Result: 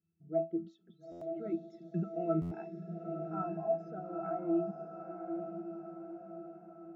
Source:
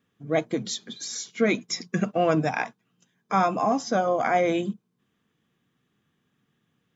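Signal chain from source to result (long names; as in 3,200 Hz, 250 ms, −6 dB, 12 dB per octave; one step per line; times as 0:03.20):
spectral envelope exaggerated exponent 1.5
low-pass filter 3,500 Hz 6 dB per octave
resonances in every octave E, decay 0.23 s
on a send: feedback delay with all-pass diffusion 922 ms, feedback 51%, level −6 dB
on the sum: buffer that repeats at 0:01.11/0:02.41, samples 512, times 8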